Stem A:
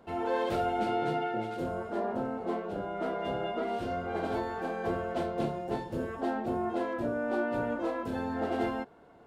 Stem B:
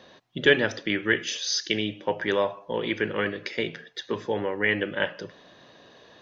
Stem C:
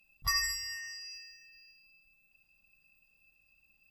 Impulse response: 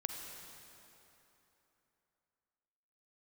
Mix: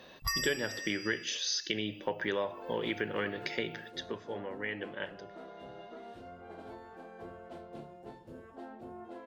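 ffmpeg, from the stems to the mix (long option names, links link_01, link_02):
-filter_complex "[0:a]adelay=2350,volume=-15dB[link_01];[1:a]volume=-2dB,afade=type=out:start_time=3.87:duration=0.31:silence=0.298538[link_02];[2:a]volume=2.5dB[link_03];[link_01][link_02][link_03]amix=inputs=3:normalize=0,acompressor=threshold=-31dB:ratio=3"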